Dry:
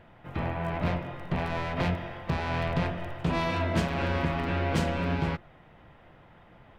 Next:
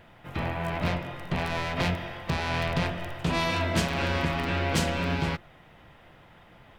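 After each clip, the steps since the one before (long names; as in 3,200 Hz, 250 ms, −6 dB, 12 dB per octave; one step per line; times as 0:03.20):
high-shelf EQ 2,900 Hz +11.5 dB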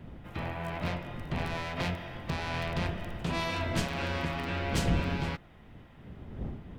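wind on the microphone 180 Hz −34 dBFS
level −5.5 dB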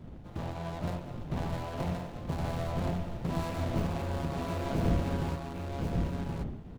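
running median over 25 samples
single-tap delay 1,072 ms −3 dB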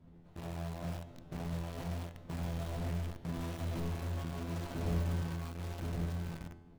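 tuned comb filter 85 Hz, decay 0.83 s, harmonics all, mix 90%
in parallel at −5.5 dB: bit reduction 7 bits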